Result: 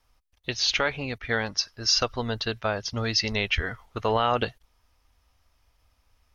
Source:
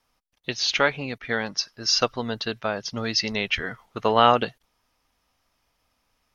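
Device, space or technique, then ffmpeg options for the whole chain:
car stereo with a boomy subwoofer: -af "lowshelf=f=110:t=q:w=1.5:g=11,alimiter=limit=-11.5dB:level=0:latency=1:release=80"

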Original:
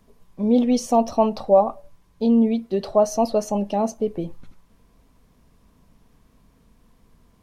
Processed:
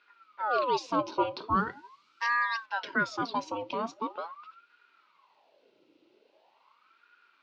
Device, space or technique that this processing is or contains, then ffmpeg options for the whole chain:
voice changer toy: -filter_complex "[0:a]aeval=exprs='val(0)*sin(2*PI*870*n/s+870*0.65/0.42*sin(2*PI*0.42*n/s))':c=same,highpass=430,equalizer=f=480:t=q:w=4:g=-5,equalizer=f=730:t=q:w=4:g=-10,equalizer=f=1.2k:t=q:w=4:g=-8,equalizer=f=1.7k:t=q:w=4:g=-9,equalizer=f=2.7k:t=q:w=4:g=7,equalizer=f=4.2k:t=q:w=4:g=5,lowpass=f=4.5k:w=0.5412,lowpass=f=4.5k:w=1.3066,asettb=1/sr,asplit=3[a][b][c];[a]atrim=end=1.504[d];[b]atrim=start=1.5:end=2.66,asetpts=PTS-STARTPTS,afade=t=in:d=0.004:c=qsin,afade=t=out:st=1.156:d=0.004:c=qsin,bass=f=250:g=12,treble=f=4k:g=14[e];[c]atrim=start=2.656[f];[d][e]acrossfade=d=0.004:c1=hsin:c2=qsin[g];[g][f]acrossfade=d=0.004:c1=qsin:c2=hsin"

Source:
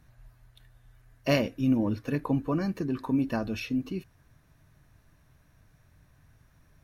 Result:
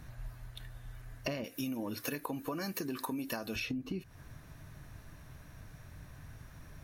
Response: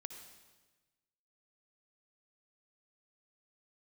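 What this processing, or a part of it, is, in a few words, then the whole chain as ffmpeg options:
serial compression, leveller first: -filter_complex "[0:a]asettb=1/sr,asplit=3[a][b][c];[a]atrim=end=1.444[d];[b]atrim=start=1.44:end=3.56,asetpts=PTS-STARTPTS,afade=t=in:d=0.004:c=qsin,afade=t=out:st=2.116:d=0.004:c=qsin,aemphasis=mode=production:type=riaa[e];[c]atrim=start=3.556[f];[d][e]acrossfade=d=0.004:c1=hsin:c2=qsin[g];[g][f]acrossfade=d=0.004:c1=qsin:c2=hsin,acompressor=threshold=-34dB:ratio=2.5,acompressor=threshold=-44dB:ratio=8,volume=9.5dB"

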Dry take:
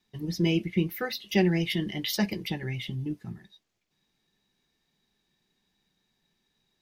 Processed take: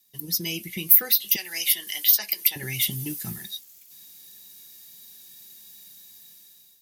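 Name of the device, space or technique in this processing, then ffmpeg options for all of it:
FM broadcast chain: -filter_complex "[0:a]asettb=1/sr,asplit=3[a][b][c];[a]atrim=end=1.364[d];[b]atrim=start=1.36:end=2.56,asetpts=PTS-STARTPTS,afade=t=in:d=0.004:c=qsin,afade=t=out:st=1.196:d=0.004:c=qsin,highpass=1.2k[e];[c]atrim=start=2.556[f];[d][e]acrossfade=d=0.004:c1=hsin:c2=qsin[g];[g][f]acrossfade=d=0.004:c1=qsin:c2=hsin,highpass=50,dynaudnorm=f=420:g=5:m=16dB,acrossover=split=1000|2500|5100[h][i][j][k];[h]acompressor=threshold=-25dB:ratio=4[l];[i]acompressor=threshold=-34dB:ratio=4[m];[j]acompressor=threshold=-36dB:ratio=4[n];[k]acompressor=threshold=-40dB:ratio=4[o];[l][m][n][o]amix=inputs=4:normalize=0,aemphasis=mode=production:type=75fm,alimiter=limit=-13dB:level=0:latency=1:release=477,asoftclip=type=hard:threshold=-14dB,lowpass=f=15k:w=0.5412,lowpass=f=15k:w=1.3066,aemphasis=mode=production:type=75fm,volume=-5.5dB"

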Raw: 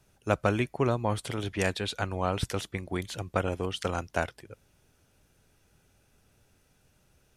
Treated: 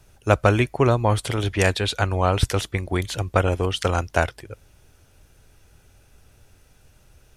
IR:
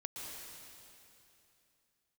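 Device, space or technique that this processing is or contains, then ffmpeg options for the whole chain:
low shelf boost with a cut just above: -af "lowshelf=f=110:g=8,equalizer=f=190:t=o:w=1.1:g=-5.5,volume=8.5dB"

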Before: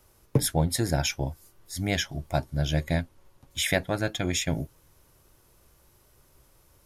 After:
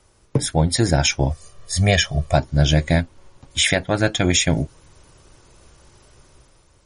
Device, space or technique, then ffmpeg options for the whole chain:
low-bitrate web radio: -filter_complex "[0:a]asettb=1/sr,asplit=3[a][b][c];[a]atrim=end=1.304[d];[b]atrim=start=1.3:end=2.35,asetpts=PTS-STARTPTS,afade=t=in:d=0.004:c=qsin,afade=t=out:st=1.046:d=0.004:c=qsin,aecho=1:1:1.7:0.81,atrim=end_sample=46305[e];[c]atrim=start=2.346[f];[d][e]acrossfade=d=0.004:c1=hsin:c2=qsin[g];[g][f]acrossfade=d=0.004:c1=qsin:c2=hsin,dynaudnorm=f=110:g=11:m=7dB,alimiter=limit=-9dB:level=0:latency=1:release=310,volume=4.5dB" -ar 44100 -c:a libmp3lame -b:a 40k

